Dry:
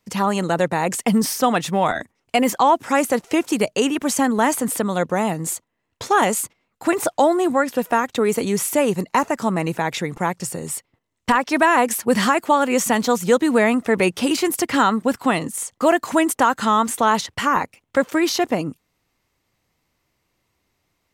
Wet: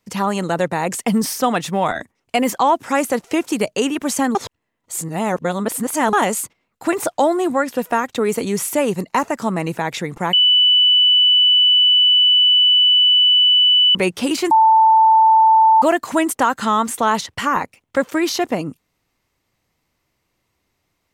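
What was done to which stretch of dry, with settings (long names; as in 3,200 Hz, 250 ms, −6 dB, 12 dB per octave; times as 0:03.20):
0:04.35–0:06.13: reverse
0:10.33–0:13.95: beep over 2,980 Hz −9.5 dBFS
0:14.51–0:15.82: beep over 886 Hz −8 dBFS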